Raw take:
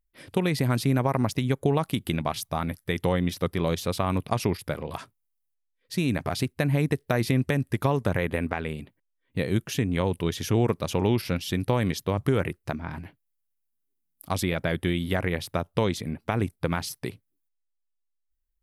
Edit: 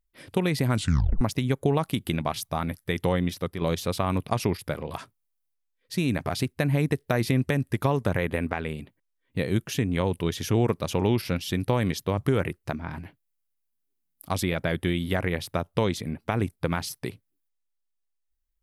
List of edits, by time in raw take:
0.73 tape stop 0.48 s
3.21–3.61 fade out linear, to -6.5 dB

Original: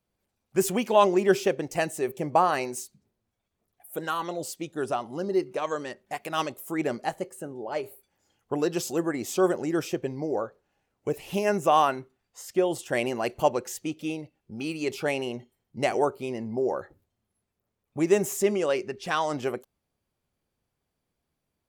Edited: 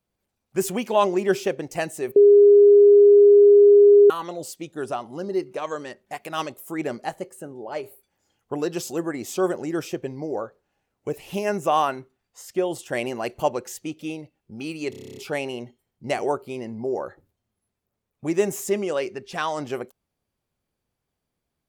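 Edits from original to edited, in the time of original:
2.16–4.1 bleep 408 Hz -8.5 dBFS
14.9 stutter 0.03 s, 10 plays

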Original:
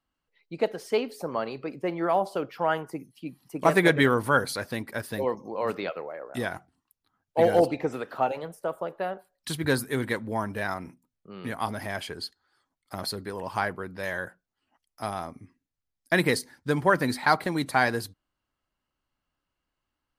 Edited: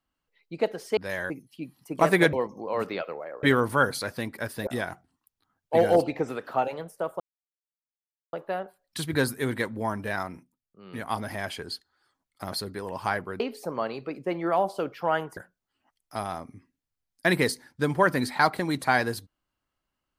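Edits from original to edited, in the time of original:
0.97–2.94 swap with 13.91–14.24
5.21–6.31 move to 3.97
8.84 insert silence 1.13 s
10.75–11.63 dip -9 dB, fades 0.37 s

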